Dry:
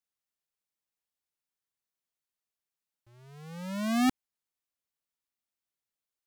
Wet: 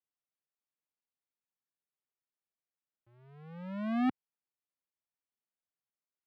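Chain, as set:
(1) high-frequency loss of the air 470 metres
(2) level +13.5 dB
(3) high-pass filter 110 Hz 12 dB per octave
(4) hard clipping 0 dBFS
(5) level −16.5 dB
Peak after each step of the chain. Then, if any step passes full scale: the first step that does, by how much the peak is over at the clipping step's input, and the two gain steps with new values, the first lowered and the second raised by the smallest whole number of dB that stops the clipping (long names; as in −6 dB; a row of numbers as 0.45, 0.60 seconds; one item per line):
−21.5, −8.0, −5.0, −5.0, −21.5 dBFS
no step passes full scale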